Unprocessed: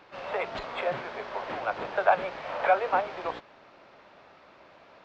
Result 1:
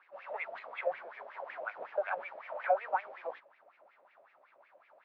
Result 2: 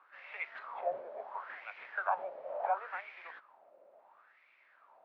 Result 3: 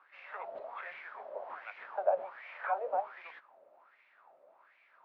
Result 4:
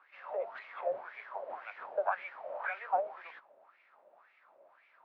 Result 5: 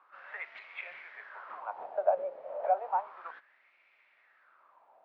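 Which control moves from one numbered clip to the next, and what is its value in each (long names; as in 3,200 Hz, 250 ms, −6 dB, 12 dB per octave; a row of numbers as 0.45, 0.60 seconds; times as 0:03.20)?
LFO wah, speed: 5.4, 0.72, 1.3, 1.9, 0.32 Hertz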